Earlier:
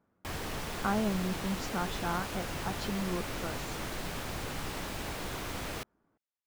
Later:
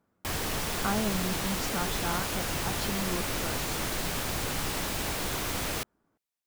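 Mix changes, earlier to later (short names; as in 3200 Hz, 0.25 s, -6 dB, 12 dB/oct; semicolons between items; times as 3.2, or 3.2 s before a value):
background +4.5 dB; master: add high shelf 4500 Hz +7.5 dB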